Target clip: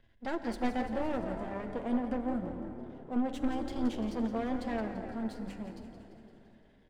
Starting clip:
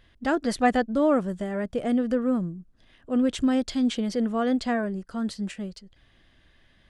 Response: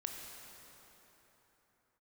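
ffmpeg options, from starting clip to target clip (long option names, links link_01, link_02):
-filter_complex "[0:a]aeval=exprs='if(lt(val(0),0),0.251*val(0),val(0))':channel_layout=same,highshelf=frequency=2600:gain=-11,bandreject=frequency=50:width_type=h:width=6,bandreject=frequency=100:width_type=h:width=6,bandreject=frequency=150:width_type=h:width=6,bandreject=frequency=200:width_type=h:width=6,asplit=8[link_01][link_02][link_03][link_04][link_05][link_06][link_07][link_08];[link_02]adelay=171,afreqshift=36,volume=-11dB[link_09];[link_03]adelay=342,afreqshift=72,volume=-15.7dB[link_10];[link_04]adelay=513,afreqshift=108,volume=-20.5dB[link_11];[link_05]adelay=684,afreqshift=144,volume=-25.2dB[link_12];[link_06]adelay=855,afreqshift=180,volume=-29.9dB[link_13];[link_07]adelay=1026,afreqshift=216,volume=-34.7dB[link_14];[link_08]adelay=1197,afreqshift=252,volume=-39.4dB[link_15];[link_01][link_09][link_10][link_11][link_12][link_13][link_14][link_15]amix=inputs=8:normalize=0,acrossover=split=270|3000[link_16][link_17][link_18];[link_17]acompressor=threshold=-30dB:ratio=2[link_19];[link_16][link_19][link_18]amix=inputs=3:normalize=0,bandreject=frequency=1200:width=5.4,aeval=exprs='0.168*(cos(1*acos(clip(val(0)/0.168,-1,1)))-cos(1*PI/2))+0.0119*(cos(8*acos(clip(val(0)/0.168,-1,1)))-cos(8*PI/2))':channel_layout=same,asplit=2[link_20][link_21];[1:a]atrim=start_sample=2205,adelay=9[link_22];[link_21][link_22]afir=irnorm=-1:irlink=0,volume=-5dB[link_23];[link_20][link_23]amix=inputs=2:normalize=0,volume=-4dB"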